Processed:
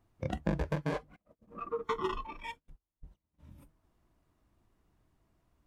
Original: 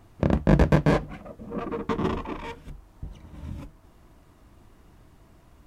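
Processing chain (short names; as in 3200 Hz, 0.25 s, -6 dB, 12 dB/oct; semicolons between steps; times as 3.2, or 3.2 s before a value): 1.16–3.4 gate -39 dBFS, range -23 dB; spectral noise reduction 18 dB; compressor 16:1, threshold -28 dBFS, peak gain reduction 16 dB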